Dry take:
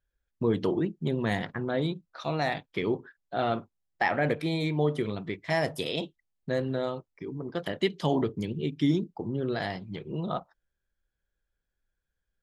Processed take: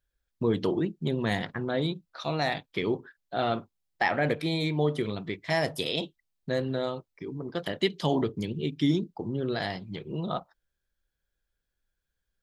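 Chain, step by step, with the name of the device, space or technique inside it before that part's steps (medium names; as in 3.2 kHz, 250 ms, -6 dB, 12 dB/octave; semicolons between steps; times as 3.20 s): presence and air boost (peaking EQ 4.1 kHz +4 dB 1 oct; treble shelf 9.7 kHz +4 dB)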